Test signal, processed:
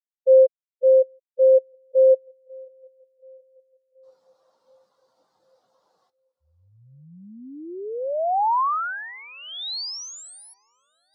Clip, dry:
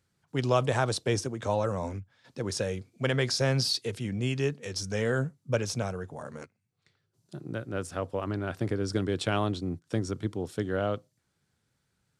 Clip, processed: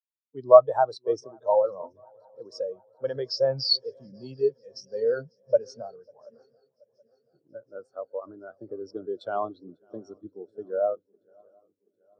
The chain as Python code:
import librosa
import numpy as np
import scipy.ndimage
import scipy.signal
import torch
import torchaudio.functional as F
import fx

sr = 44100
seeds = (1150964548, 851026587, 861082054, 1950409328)

p1 = fx.high_shelf_res(x, sr, hz=3200.0, db=9.0, q=1.5)
p2 = fx.fold_sine(p1, sr, drive_db=6, ceiling_db=-6.0)
p3 = p1 + F.gain(torch.from_numpy(p2), -6.0).numpy()
p4 = scipy.signal.sosfilt(scipy.signal.butter(2, 110.0, 'highpass', fs=sr, output='sos'), p3)
p5 = fx.peak_eq(p4, sr, hz=1000.0, db=13.5, octaves=2.8)
p6 = p5 + fx.echo_swing(p5, sr, ms=728, ratio=3, feedback_pct=73, wet_db=-14.0, dry=0)
p7 = fx.spectral_expand(p6, sr, expansion=2.5)
y = F.gain(torch.from_numpy(p7), -7.5).numpy()